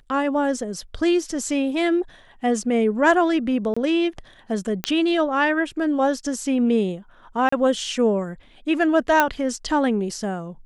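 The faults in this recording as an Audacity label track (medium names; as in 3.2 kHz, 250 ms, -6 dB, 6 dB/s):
3.740000	3.770000	dropout 25 ms
4.840000	4.840000	pop -7 dBFS
7.490000	7.520000	dropout 34 ms
9.200000	9.200000	pop -3 dBFS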